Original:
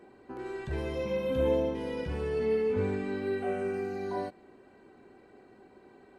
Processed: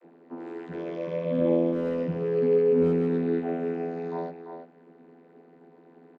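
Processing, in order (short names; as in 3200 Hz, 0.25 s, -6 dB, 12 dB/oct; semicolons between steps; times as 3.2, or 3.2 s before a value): 1.22–3.38 low shelf 190 Hz +12 dB; vocoder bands 32, saw 84.3 Hz; speakerphone echo 0.34 s, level -7 dB; gain +3 dB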